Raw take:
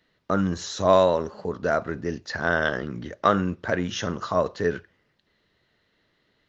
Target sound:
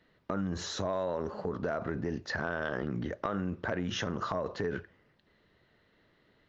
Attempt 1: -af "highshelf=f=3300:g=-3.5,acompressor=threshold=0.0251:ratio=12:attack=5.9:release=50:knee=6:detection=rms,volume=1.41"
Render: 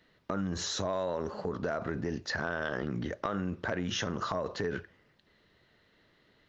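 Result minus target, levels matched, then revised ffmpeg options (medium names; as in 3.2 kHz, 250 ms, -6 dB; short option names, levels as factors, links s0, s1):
8 kHz band +4.5 dB
-af "highshelf=f=3300:g=-11.5,acompressor=threshold=0.0251:ratio=12:attack=5.9:release=50:knee=6:detection=rms,volume=1.41"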